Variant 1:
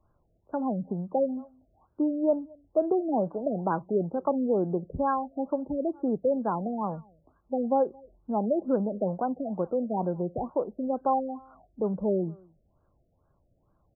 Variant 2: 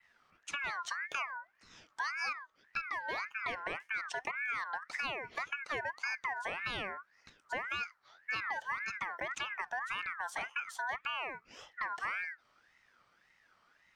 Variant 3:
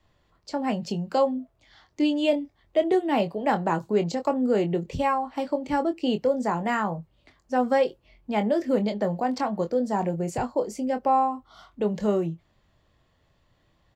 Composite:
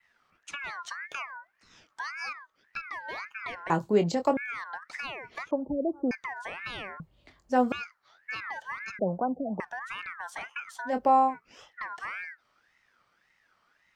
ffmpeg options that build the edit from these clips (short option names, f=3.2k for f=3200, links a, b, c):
-filter_complex "[2:a]asplit=3[a][b][c];[0:a]asplit=2[d][e];[1:a]asplit=6[f][g][h][i][j][k];[f]atrim=end=3.702[l];[a]atrim=start=3.698:end=4.372[m];[g]atrim=start=4.368:end=5.512[n];[d]atrim=start=5.508:end=6.112[o];[h]atrim=start=6.108:end=7.002[p];[b]atrim=start=6.998:end=7.722[q];[i]atrim=start=7.718:end=8.992[r];[e]atrim=start=8.988:end=9.602[s];[j]atrim=start=9.598:end=10.95[t];[c]atrim=start=10.85:end=11.37[u];[k]atrim=start=11.27[v];[l][m]acrossfade=d=0.004:c1=hsin:c2=hsin[w];[w][n]acrossfade=d=0.004:c1=hsin:c2=hsin[x];[x][o]acrossfade=d=0.004:c1=hsin:c2=hsin[y];[y][p]acrossfade=d=0.004:c1=hsin:c2=hsin[z];[z][q]acrossfade=d=0.004:c1=hsin:c2=hsin[aa];[aa][r]acrossfade=d=0.004:c1=hsin:c2=hsin[ab];[ab][s]acrossfade=d=0.004:c1=hsin:c2=hsin[ac];[ac][t]acrossfade=d=0.004:c1=hsin:c2=hsin[ad];[ad][u]acrossfade=d=0.1:c1=tri:c2=tri[ae];[ae][v]acrossfade=d=0.1:c1=tri:c2=tri"